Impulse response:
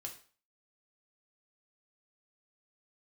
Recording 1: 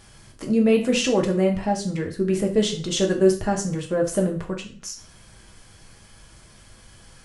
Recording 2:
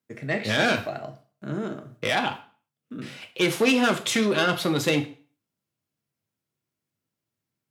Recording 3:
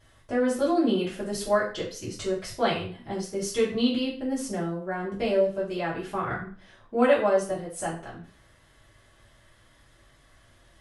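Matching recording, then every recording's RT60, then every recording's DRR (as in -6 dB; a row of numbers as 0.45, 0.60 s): 1; 0.40, 0.40, 0.40 s; 0.5, 5.0, -9.0 dB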